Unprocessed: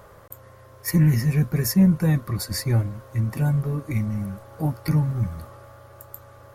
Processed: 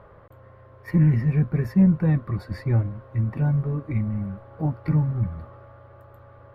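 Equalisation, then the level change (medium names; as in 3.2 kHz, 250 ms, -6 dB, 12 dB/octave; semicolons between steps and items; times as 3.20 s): distance through air 470 m; 0.0 dB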